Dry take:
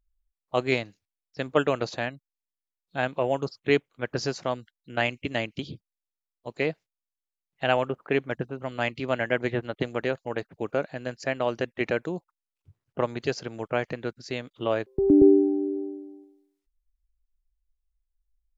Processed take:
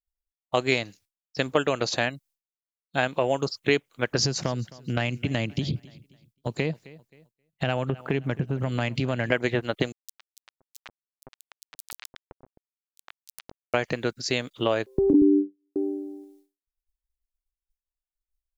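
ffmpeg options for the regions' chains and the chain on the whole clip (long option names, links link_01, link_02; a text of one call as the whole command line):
ffmpeg -i in.wav -filter_complex "[0:a]asettb=1/sr,asplit=3[link_01][link_02][link_03];[link_01]atrim=end=4.194[link_04];[link_02]atrim=start=4.19:end=9.32,asetpts=PTS-STARTPTS,afade=type=in:duration=0.004:curve=qsin,afade=type=out:start_time=5.126:duration=0.004:curve=qsin,equalizer=frequency=130:width=0.58:gain=13,acompressor=threshold=-29dB:ratio=3:attack=3.2:release=140:knee=1:detection=peak,aecho=1:1:263|526|789:0.0841|0.0328|0.0128,atrim=end_sample=226233[link_05];[link_03]atrim=start=9.316[link_06];[link_04][link_05]acrossfade=duration=0.004:curve1=hsin:curve2=qsin[link_07];[link_07][link_06]acrossfade=duration=0.004:curve1=qsin:curve2=hsin,asettb=1/sr,asplit=3[link_08][link_09][link_10];[link_08]atrim=end=9.924[link_11];[link_09]atrim=start=9.92:end=13.74,asetpts=PTS-STARTPTS,afade=type=in:duration=0.004:curve=qsin,afade=type=out:start_time=3.816:duration=0.004:curve=qsin,acompressor=threshold=-41dB:ratio=5:attack=3.2:release=140:knee=1:detection=peak,acrusher=bits=3:dc=4:mix=0:aa=0.000001,acrossover=split=850|4300[link_12][link_13][link_14];[link_13]adelay=110[link_15];[link_12]adelay=520[link_16];[link_16][link_15][link_14]amix=inputs=3:normalize=0,atrim=end_sample=168462[link_17];[link_10]atrim=start=13.736[link_18];[link_11][link_17]acrossfade=duration=0.004:curve1=hsin:curve2=qsin[link_19];[link_19][link_18]acrossfade=duration=0.004:curve1=qsin:curve2=hsin,asettb=1/sr,asplit=3[link_20][link_21][link_22];[link_20]atrim=end=15.134[link_23];[link_21]atrim=start=15.13:end=15.76,asetpts=PTS-STARTPTS,afade=type=in:duration=0.004:curve=qsin,afade=type=out:start_time=0.626:duration=0.004:curve=qsin,agate=range=-57dB:threshold=-20dB:ratio=16:release=100:detection=peak,asuperstop=centerf=950:order=8:qfactor=0.53,equalizer=frequency=270:width=3.1:gain=11.5[link_24];[link_22]atrim=start=15.756[link_25];[link_23][link_24]acrossfade=duration=0.004:curve1=hsin:curve2=qsin[link_26];[link_26][link_25]acrossfade=duration=0.004:curve1=qsin:curve2=hsin,acompressor=threshold=-27dB:ratio=3,agate=range=-33dB:threshold=-59dB:ratio=3:detection=peak,highshelf=frequency=3800:gain=11,volume=6dB" out.wav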